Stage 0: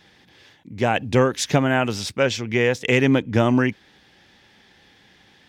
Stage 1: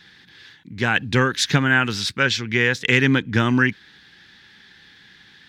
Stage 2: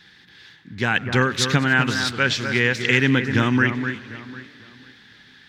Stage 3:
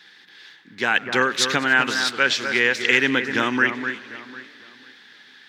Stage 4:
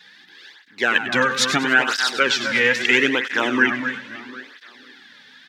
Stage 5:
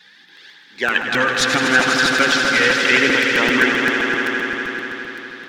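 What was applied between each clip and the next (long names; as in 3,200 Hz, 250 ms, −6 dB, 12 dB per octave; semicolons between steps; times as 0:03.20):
graphic EQ with 15 bands 160 Hz +4 dB, 630 Hz −11 dB, 1,600 Hz +10 dB, 4,000 Hz +9 dB; level −1 dB
on a send: delay that swaps between a low-pass and a high-pass 250 ms, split 2,100 Hz, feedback 51%, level −7.5 dB; on the sum: feedback echo with a swinging delay time 97 ms, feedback 80%, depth 212 cents, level −22 dB; level −1 dB
high-pass filter 350 Hz 12 dB per octave; level +1.5 dB
single-tap delay 99 ms −10.5 dB; through-zero flanger with one copy inverted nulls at 0.76 Hz, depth 3.1 ms; level +4 dB
echo that builds up and dies away 81 ms, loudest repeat 5, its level −9 dB; regular buffer underruns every 0.13 s, samples 256, repeat, from 0:00.36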